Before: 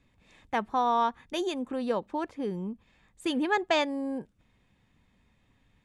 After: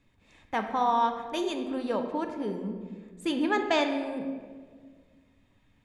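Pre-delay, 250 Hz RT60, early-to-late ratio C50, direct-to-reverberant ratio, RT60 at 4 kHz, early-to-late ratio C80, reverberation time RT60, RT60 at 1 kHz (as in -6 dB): 3 ms, 2.2 s, 6.5 dB, 4.5 dB, 1.0 s, 8.0 dB, 1.7 s, 1.4 s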